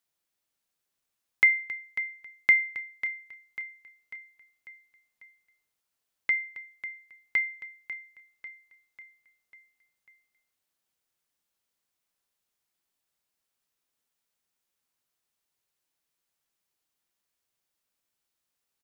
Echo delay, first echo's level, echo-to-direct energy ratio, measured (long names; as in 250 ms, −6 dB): 545 ms, −12.0 dB, −10.5 dB